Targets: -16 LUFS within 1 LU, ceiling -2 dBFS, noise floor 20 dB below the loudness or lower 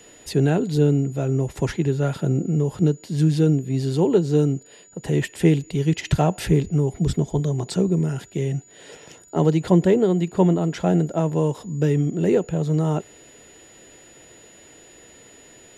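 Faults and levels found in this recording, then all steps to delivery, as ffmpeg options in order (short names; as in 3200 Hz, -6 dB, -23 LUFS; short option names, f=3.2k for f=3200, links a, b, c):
steady tone 6900 Hz; tone level -49 dBFS; loudness -21.5 LUFS; peak -4.0 dBFS; loudness target -16.0 LUFS
-> -af "bandreject=f=6.9k:w=30"
-af "volume=5.5dB,alimiter=limit=-2dB:level=0:latency=1"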